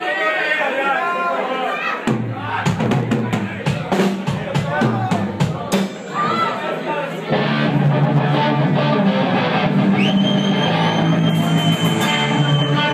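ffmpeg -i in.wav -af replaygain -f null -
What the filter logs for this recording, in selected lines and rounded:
track_gain = -0.2 dB
track_peak = 0.353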